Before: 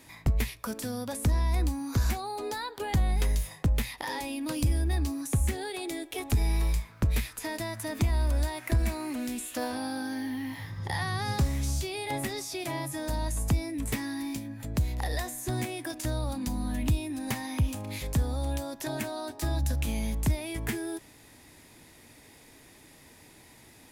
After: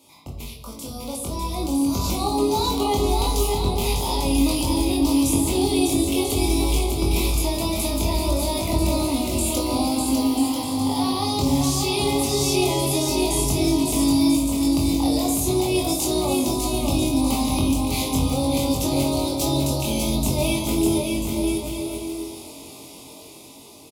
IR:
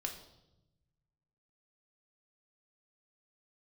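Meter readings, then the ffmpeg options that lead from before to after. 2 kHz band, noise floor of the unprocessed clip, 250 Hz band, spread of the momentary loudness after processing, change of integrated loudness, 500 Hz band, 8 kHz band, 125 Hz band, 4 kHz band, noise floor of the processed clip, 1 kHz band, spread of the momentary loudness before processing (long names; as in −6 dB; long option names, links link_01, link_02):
+3.0 dB, −55 dBFS, +13.5 dB, 9 LU, +9.5 dB, +13.5 dB, +13.0 dB, +3.5 dB, +14.0 dB, −42 dBFS, +10.5 dB, 7 LU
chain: -filter_complex "[0:a]highpass=frequency=240:poles=1,alimiter=level_in=3dB:limit=-24dB:level=0:latency=1:release=81,volume=-3dB,dynaudnorm=framelen=570:gausssize=5:maxgain=11dB,asuperstop=centerf=1700:order=4:qfactor=1.2,asplit=2[link_01][link_02];[link_02]adelay=22,volume=-3.5dB[link_03];[link_01][link_03]amix=inputs=2:normalize=0,aecho=1:1:600|990|1244|1408|1515:0.631|0.398|0.251|0.158|0.1[link_04];[1:a]atrim=start_sample=2205[link_05];[link_04][link_05]afir=irnorm=-1:irlink=0,volume=1.5dB"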